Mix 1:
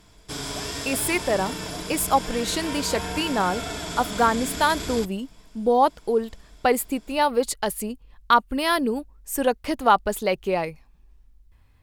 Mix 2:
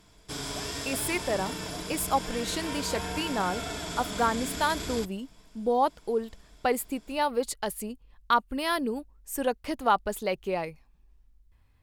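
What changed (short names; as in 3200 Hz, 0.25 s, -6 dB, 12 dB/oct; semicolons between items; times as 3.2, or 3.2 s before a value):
speech -6.0 dB; background -3.5 dB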